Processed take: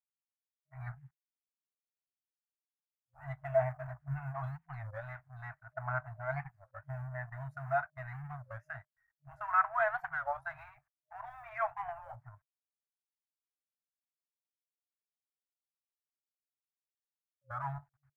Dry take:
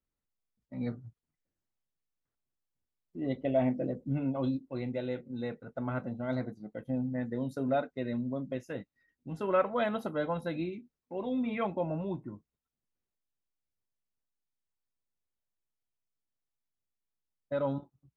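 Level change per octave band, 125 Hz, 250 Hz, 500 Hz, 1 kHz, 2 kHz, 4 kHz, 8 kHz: −3.0 dB, below −20 dB, −6.5 dB, +2.5 dB, +5.0 dB, below −15 dB, can't be measured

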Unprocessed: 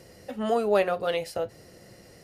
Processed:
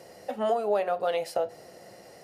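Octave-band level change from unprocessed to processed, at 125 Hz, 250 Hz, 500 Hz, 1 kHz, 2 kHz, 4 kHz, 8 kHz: −8.5, −7.0, −1.5, +1.0, −5.5, −4.0, −1.5 decibels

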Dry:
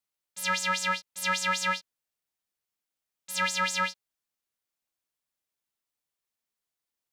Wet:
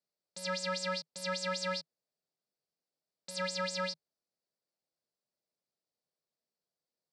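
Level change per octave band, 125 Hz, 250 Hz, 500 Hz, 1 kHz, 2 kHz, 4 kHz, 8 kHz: −2.0, −2.0, +2.5, −10.0, −11.0, −5.5, −9.5 decibels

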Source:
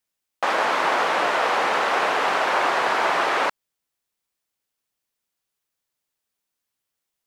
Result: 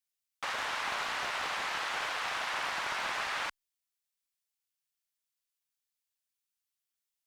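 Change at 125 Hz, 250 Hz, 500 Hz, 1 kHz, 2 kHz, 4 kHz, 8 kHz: can't be measured, −19.0 dB, −20.0 dB, −15.0 dB, −11.0 dB, −7.5 dB, −6.0 dB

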